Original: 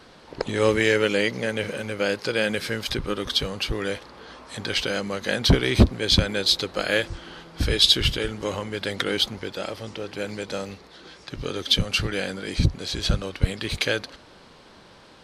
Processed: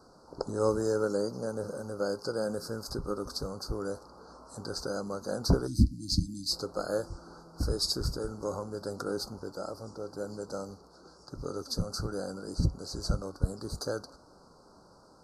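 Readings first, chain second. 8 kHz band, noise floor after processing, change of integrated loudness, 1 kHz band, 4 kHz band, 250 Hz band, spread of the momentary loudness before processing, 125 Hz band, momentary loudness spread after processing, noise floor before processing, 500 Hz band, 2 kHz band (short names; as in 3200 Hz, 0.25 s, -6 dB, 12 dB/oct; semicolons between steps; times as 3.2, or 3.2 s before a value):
-6.5 dB, -58 dBFS, -9.5 dB, -7.0 dB, -15.0 dB, -7.0 dB, 15 LU, -7.0 dB, 14 LU, -50 dBFS, -6.5 dB, -20.5 dB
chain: spectral delete 5.67–6.51, 330–2500 Hz; Chebyshev band-stop 1400–4600 Hz, order 4; resonator 58 Hz, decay 0.22 s, harmonics odd, mix 40%; gain -3 dB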